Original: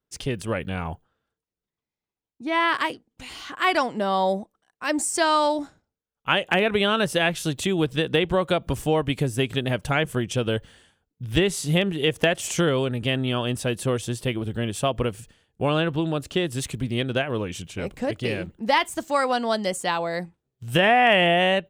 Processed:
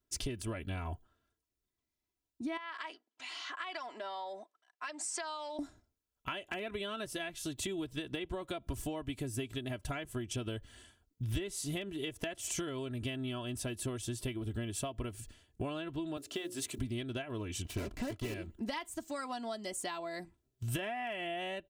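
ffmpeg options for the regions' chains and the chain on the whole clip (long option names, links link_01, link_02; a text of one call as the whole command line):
ffmpeg -i in.wav -filter_complex "[0:a]asettb=1/sr,asplit=3[link_01][link_02][link_03];[link_01]atrim=end=2.574[link_04];[link_02]atrim=start=2.57:end=5.59,asetpts=PTS-STARTPTS,afade=type=in:duration=0.004:curve=qsin,afade=type=out:start_time=3.016:duration=0.004:curve=qsin,aemphasis=mode=reproduction:type=cd,acompressor=threshold=-25dB:ratio=10:attack=3.2:release=140:knee=1:detection=peak,highpass=780,lowpass=6800[link_05];[link_03]atrim=start=5.586[link_06];[link_04][link_05]acrossfade=duration=0.004:curve1=hsin:curve2=qsin[link_07];[link_07][link_06]acrossfade=duration=0.004:curve1=qsin:curve2=hsin,asettb=1/sr,asplit=3[link_08][link_09][link_10];[link_08]atrim=end=16.174[link_11];[link_09]atrim=start=16.17:end=16.79,asetpts=PTS-STARTPTS,afade=type=in:duration=0.004:curve=qsin,afade=type=out:start_time=0.616:duration=0.004:curve=qsin,highpass=240,bandreject=frequency=60:width_type=h:width=6,bandreject=frequency=120:width_type=h:width=6,bandreject=frequency=180:width_type=h:width=6,bandreject=frequency=240:width_type=h:width=6,bandreject=frequency=300:width_type=h:width=6,bandreject=frequency=360:width_type=h:width=6,bandreject=frequency=420:width_type=h:width=6,bandreject=frequency=480:width_type=h:width=6,bandreject=frequency=540:width_type=h:width=6,acrusher=bits=8:mode=log:mix=0:aa=0.000001[link_12];[link_10]atrim=start=16.786[link_13];[link_11][link_12]acrossfade=duration=0.004:curve1=hsin:curve2=qsin[link_14];[link_14][link_13]acrossfade=duration=0.004:curve1=qsin:curve2=hsin,asettb=1/sr,asplit=3[link_15][link_16][link_17];[link_15]atrim=end=17.654[link_18];[link_16]atrim=start=17.65:end=18.34,asetpts=PTS-STARTPTS,afade=type=in:duration=0.004:curve=qsin,afade=type=out:start_time=0.686:duration=0.004:curve=qsin,aeval=exprs='val(0)+0.5*0.0355*sgn(val(0))':channel_layout=same,lowpass=frequency=3500:poles=1,acrusher=bits=4:mix=0:aa=0.5[link_19];[link_17]atrim=start=18.336[link_20];[link_18][link_19]acrossfade=duration=0.004:curve1=hsin:curve2=qsin[link_21];[link_21][link_20]acrossfade=duration=0.004:curve1=qsin:curve2=hsin,aecho=1:1:3:0.69,acompressor=threshold=-34dB:ratio=6,bass=frequency=250:gain=6,treble=frequency=4000:gain=5,volume=-4.5dB" out.wav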